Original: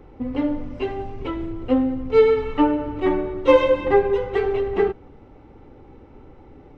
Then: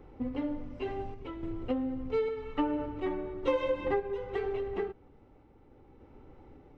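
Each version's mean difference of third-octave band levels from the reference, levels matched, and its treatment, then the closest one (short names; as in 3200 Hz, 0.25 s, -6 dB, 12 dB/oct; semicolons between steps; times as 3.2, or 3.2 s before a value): 2.0 dB: compressor 5:1, threshold -19 dBFS, peak gain reduction 10 dB; random-step tremolo; gain -6.5 dB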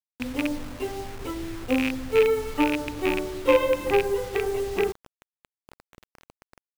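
8.0 dB: rattling part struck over -25 dBFS, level -10 dBFS; bit-crush 6-bit; gain -5 dB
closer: first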